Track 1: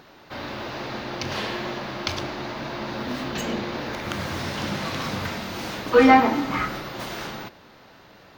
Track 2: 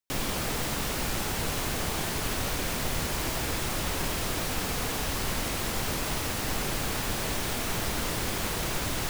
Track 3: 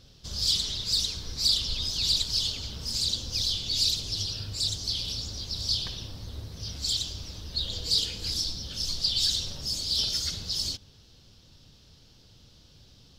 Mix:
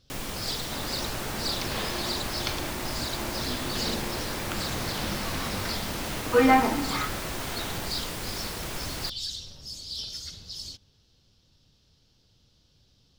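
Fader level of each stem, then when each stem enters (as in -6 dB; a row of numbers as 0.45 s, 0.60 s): -5.0 dB, -4.5 dB, -8.5 dB; 0.40 s, 0.00 s, 0.00 s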